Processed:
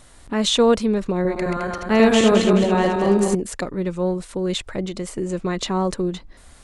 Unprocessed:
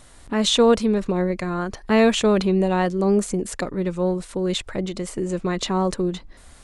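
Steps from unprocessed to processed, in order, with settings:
0:01.14–0:03.35: feedback delay that plays each chunk backwards 107 ms, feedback 68%, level −3 dB

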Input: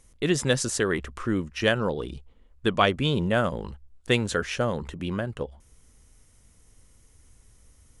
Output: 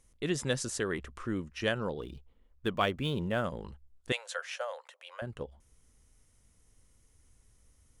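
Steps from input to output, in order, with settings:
0:02.01–0:03.45: running median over 5 samples
0:04.12–0:05.22: Chebyshev high-pass filter 520 Hz, order 6
level −8 dB

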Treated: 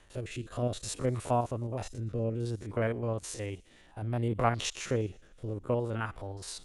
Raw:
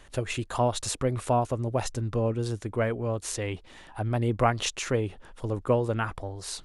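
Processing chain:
spectrum averaged block by block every 50 ms
harmonic generator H 3 −31 dB, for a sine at −10 dBFS
rotating-speaker cabinet horn 0.6 Hz
on a send: delay with a high-pass on its return 119 ms, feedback 54%, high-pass 3,200 Hz, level −21.5 dB
on the sum: level −1.5 dB

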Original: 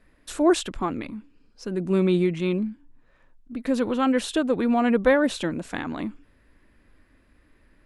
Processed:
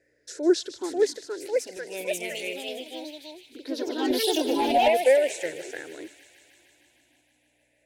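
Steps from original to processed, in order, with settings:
rippled gain that drifts along the octave scale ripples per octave 0.54, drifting −0.36 Hz, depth 16 dB
mains hum 60 Hz, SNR 31 dB
high-pass filter 290 Hz 12 dB per octave
delay with pitch and tempo change per echo 604 ms, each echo +3 semitones, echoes 3
0:01.77–0:02.69: spectral tilt +2 dB per octave
0:04.10–0:04.88: leveller curve on the samples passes 1
phaser with its sweep stopped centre 490 Hz, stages 4
delay with a high-pass on its return 154 ms, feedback 77%, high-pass 2,500 Hz, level −12 dB
level −4 dB

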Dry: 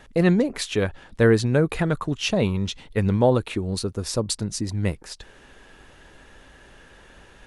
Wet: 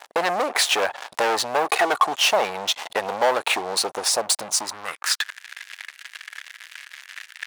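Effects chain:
0:01.65–0:02.07: comb filter 2.7 ms, depth 92%
0:04.09–0:04.88: parametric band 1,600 Hz −8 dB 2.7 octaves
leveller curve on the samples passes 5
downward compressor 6 to 1, threshold −20 dBFS, peak gain reduction 11.5 dB
high-pass filter sweep 760 Hz → 1,900 Hz, 0:04.42–0:05.46
level +2 dB

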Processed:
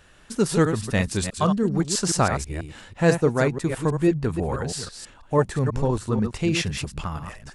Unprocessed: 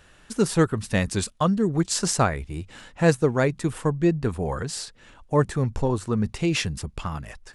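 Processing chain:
delay that plays each chunk backwards 163 ms, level −7 dB

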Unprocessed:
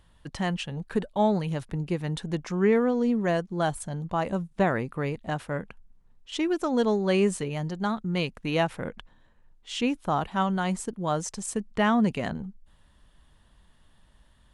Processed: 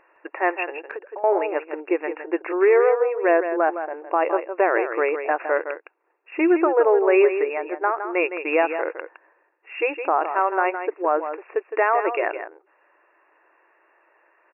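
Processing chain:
in parallel at +2.5 dB: speech leveller 2 s
on the sum: linear-phase brick-wall band-pass 310–2,800 Hz
brickwall limiter −11 dBFS, peak gain reduction 6 dB
single-tap delay 162 ms −9 dB
0:00.82–0:01.24: downward compressor 20 to 1, threshold −33 dBFS, peak gain reduction 18 dB
level +2 dB

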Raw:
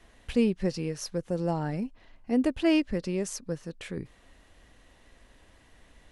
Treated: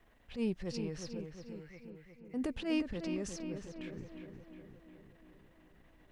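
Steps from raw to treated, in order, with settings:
low-pass that shuts in the quiet parts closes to 2,600 Hz, open at −20.5 dBFS
transient designer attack −11 dB, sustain +5 dB
0:01.26–0:02.34: four-pole ladder high-pass 2,000 Hz, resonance 75%
bit-depth reduction 12 bits, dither none
feedback echo with a low-pass in the loop 359 ms, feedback 63%, low-pass 2,900 Hz, level −6.5 dB
level −8.5 dB

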